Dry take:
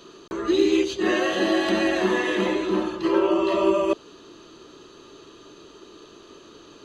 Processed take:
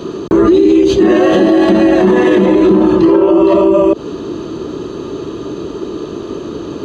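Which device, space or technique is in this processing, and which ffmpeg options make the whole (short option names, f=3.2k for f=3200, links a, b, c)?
mastering chain: -af "highpass=56,equalizer=f=910:t=o:w=0.77:g=2,acompressor=threshold=-21dB:ratio=6,tiltshelf=f=710:g=9,alimiter=level_in=21dB:limit=-1dB:release=50:level=0:latency=1,volume=-1dB"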